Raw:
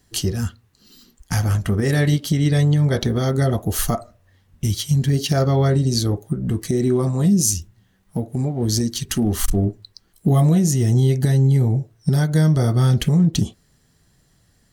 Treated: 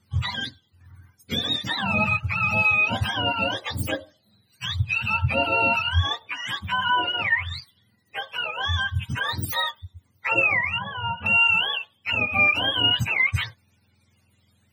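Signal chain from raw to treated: spectrum inverted on a logarithmic axis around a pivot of 610 Hz; 10.78–11.26 s: low-pass 1.2 kHz 12 dB/octave; trim -2 dB

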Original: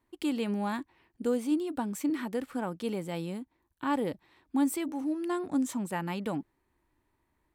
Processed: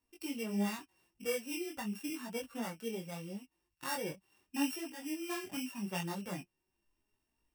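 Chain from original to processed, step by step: sorted samples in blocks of 16 samples; treble shelf 6.3 kHz +7.5 dB; in parallel at 0 dB: compression, threshold -44 dBFS, peak gain reduction 20.5 dB; on the sum: flange 0.4 Hz, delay 4.2 ms, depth 1.6 ms, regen +57%; spectral noise reduction 7 dB; detune thickener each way 28 cents

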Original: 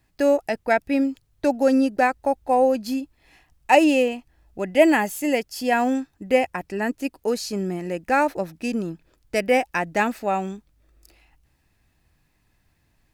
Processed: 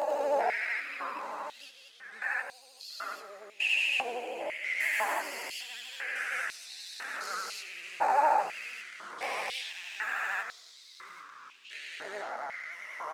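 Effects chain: spectrogram pixelated in time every 400 ms; 1.69–2.22 s: gate -19 dBFS, range -20 dB; peak limiter -18.5 dBFS, peak gain reduction 7 dB; chorus 0.49 Hz, delay 16.5 ms, depth 4.1 ms; vibrato 13 Hz 80 cents; on a send: frequency-shifting echo 93 ms, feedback 65%, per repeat -81 Hz, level -13 dB; on the sum: ever faster or slower copies 104 ms, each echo -4 st, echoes 3, each echo -6 dB; step-sequenced high-pass 2 Hz 820–4200 Hz

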